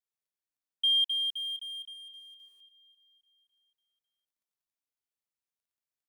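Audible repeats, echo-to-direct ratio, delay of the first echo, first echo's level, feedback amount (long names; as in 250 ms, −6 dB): 2, −19.0 dB, 549 ms, −20.0 dB, 42%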